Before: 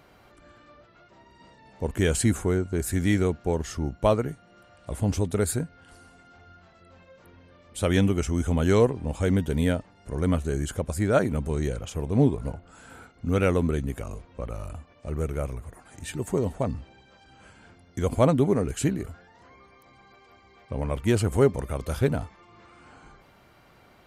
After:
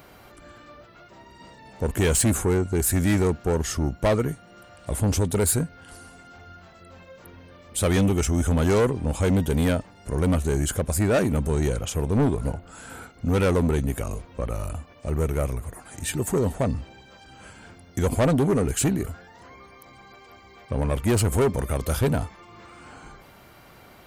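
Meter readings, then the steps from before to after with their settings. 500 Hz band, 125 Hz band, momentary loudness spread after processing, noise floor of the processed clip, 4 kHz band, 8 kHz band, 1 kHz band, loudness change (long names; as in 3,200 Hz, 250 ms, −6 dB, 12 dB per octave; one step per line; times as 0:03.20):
+1.0 dB, +2.5 dB, 12 LU, −50 dBFS, +4.0 dB, +8.0 dB, +2.0 dB, +2.0 dB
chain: high-shelf EQ 10,000 Hz +12 dB
soft clipping −22 dBFS, distortion −9 dB
level +6 dB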